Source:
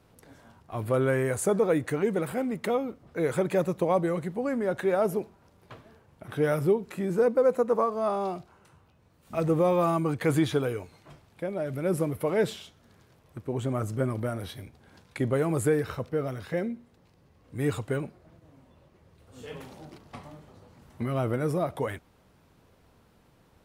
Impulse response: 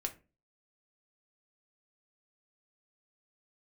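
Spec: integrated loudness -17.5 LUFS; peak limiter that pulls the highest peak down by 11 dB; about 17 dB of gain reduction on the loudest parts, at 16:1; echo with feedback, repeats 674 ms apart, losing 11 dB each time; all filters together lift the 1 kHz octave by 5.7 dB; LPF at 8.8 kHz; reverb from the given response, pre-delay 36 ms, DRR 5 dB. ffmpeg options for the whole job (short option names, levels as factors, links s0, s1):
-filter_complex "[0:a]lowpass=8800,equalizer=f=1000:t=o:g=7.5,acompressor=threshold=0.02:ratio=16,alimiter=level_in=2.82:limit=0.0631:level=0:latency=1,volume=0.355,aecho=1:1:674|1348|2022:0.282|0.0789|0.0221,asplit=2[s0][s1];[1:a]atrim=start_sample=2205,adelay=36[s2];[s1][s2]afir=irnorm=-1:irlink=0,volume=0.531[s3];[s0][s3]amix=inputs=2:normalize=0,volume=17.8"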